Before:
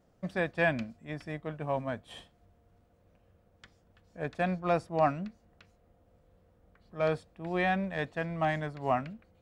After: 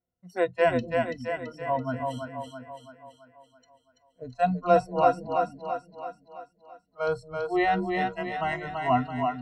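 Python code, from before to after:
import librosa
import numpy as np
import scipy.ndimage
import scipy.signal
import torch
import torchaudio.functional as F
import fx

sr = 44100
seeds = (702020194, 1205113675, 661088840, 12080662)

p1 = fx.noise_reduce_blind(x, sr, reduce_db=27)
p2 = fx.ripple_eq(p1, sr, per_octave=2.0, db=16)
p3 = p2 + fx.echo_split(p2, sr, split_hz=320.0, low_ms=226, high_ms=333, feedback_pct=52, wet_db=-4.0, dry=0)
y = p3 * 10.0 ** (2.0 / 20.0)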